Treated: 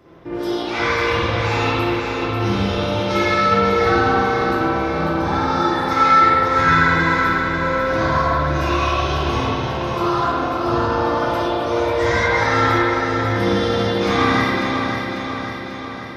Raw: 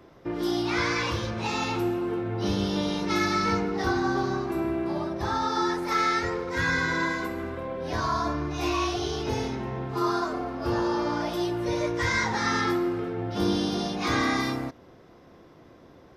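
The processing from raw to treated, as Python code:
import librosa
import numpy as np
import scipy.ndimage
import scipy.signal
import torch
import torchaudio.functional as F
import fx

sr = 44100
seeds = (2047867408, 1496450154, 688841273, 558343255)

y = fx.echo_feedback(x, sr, ms=544, feedback_pct=60, wet_db=-6)
y = fx.rev_spring(y, sr, rt60_s=1.6, pass_ms=(49, 55), chirp_ms=25, drr_db=-8.0)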